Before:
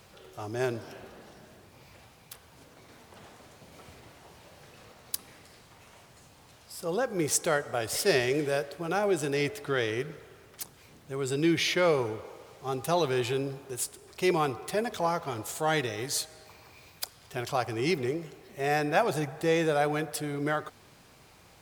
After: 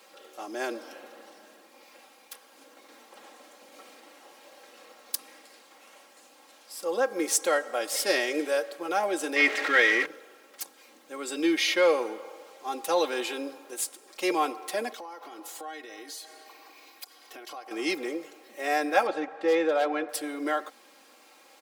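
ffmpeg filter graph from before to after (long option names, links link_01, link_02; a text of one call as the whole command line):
ffmpeg -i in.wav -filter_complex "[0:a]asettb=1/sr,asplit=3[link_01][link_02][link_03];[link_01]atrim=end=9.364[link_04];[link_02]atrim=start=9.36:end=10.06,asetpts=PTS-STARTPTS,afade=type=in:duration=0.004:curve=qsin,afade=type=out:start_time=0.696:duration=0.004:curve=qsin,aeval=exprs='val(0)+0.5*0.0299*sgn(val(0))':channel_layout=same,acrossover=split=7100[link_05][link_06];[link_06]acompressor=threshold=-57dB:ratio=4:attack=1:release=60[link_07];[link_05][link_07]amix=inputs=2:normalize=0,equalizer=frequency=2000:width_type=o:width=0.69:gain=13[link_08];[link_03]atrim=start=10.056[link_09];[link_04][link_08]acrossfade=duration=0.004:curve1=hsin:curve2=qsin[link_10];[link_10][link_09]acrossfade=duration=0.004:curve1=qsin:curve2=hsin,asettb=1/sr,asplit=3[link_11][link_12][link_13];[link_11]atrim=end=14.904[link_14];[link_12]atrim=start=14.9:end=17.71,asetpts=PTS-STARTPTS,afade=type=in:duration=0.004:curve=qsin,afade=type=out:start_time=2.806:duration=0.004:curve=qsin,equalizer=frequency=8200:width_type=o:width=0.69:gain=-4.5,aecho=1:1:2.7:0.49,atrim=end_sample=123921,acompressor=threshold=-39dB:ratio=8:attack=3.2:release=140:knee=1:detection=peak[link_15];[link_13]atrim=start=17.706[link_16];[link_14][link_15]acrossfade=duration=0.004:curve1=hsin:curve2=qsin[link_17];[link_17][link_16]acrossfade=duration=0.004:curve1=qsin:curve2=hsin,asettb=1/sr,asplit=3[link_18][link_19][link_20];[link_18]atrim=end=19.074[link_21];[link_19]atrim=start=19.07:end=20.09,asetpts=PTS-STARTPTS,afade=type=in:duration=0.004:curve=qsin,afade=type=out:start_time=1.016:duration=0.004:curve=qsin,lowpass=2900,aeval=exprs='0.126*(abs(mod(val(0)/0.126+3,4)-2)-1)':channel_layout=same[link_22];[link_20]atrim=start=20.086[link_23];[link_21][link_22]acrossfade=duration=0.004:curve1=hsin:curve2=qsin[link_24];[link_24][link_23]acrossfade=duration=0.004:curve1=qsin:curve2=hsin,highpass=frequency=300:width=0.5412,highpass=frequency=300:width=1.3066,aecho=1:1:3.7:0.72" out.wav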